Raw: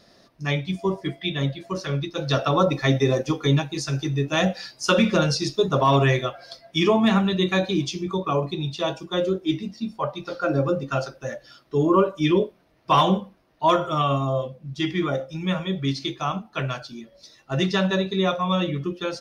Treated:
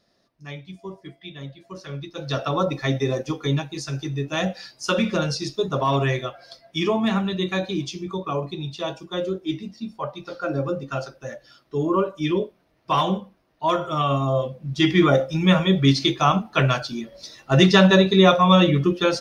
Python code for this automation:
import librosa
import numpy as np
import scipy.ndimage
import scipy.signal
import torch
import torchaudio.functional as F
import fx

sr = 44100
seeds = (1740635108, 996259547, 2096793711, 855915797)

y = fx.gain(x, sr, db=fx.line((1.45, -12.0), (2.41, -3.0), (13.67, -3.0), (15.02, 8.0)))